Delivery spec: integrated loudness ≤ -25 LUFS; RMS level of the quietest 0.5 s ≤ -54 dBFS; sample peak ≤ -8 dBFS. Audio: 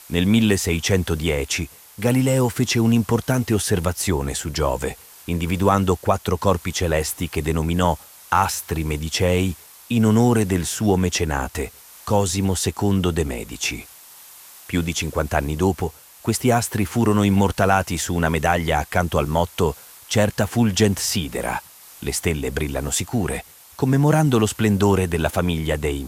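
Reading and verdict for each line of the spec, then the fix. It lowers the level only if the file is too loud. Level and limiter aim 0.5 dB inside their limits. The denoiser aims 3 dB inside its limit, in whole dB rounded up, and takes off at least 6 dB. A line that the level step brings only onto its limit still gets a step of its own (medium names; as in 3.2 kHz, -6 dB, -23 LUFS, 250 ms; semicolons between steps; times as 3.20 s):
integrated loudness -21.0 LUFS: fail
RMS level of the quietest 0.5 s -44 dBFS: fail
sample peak -3.5 dBFS: fail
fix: noise reduction 9 dB, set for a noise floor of -44 dBFS; trim -4.5 dB; peak limiter -8.5 dBFS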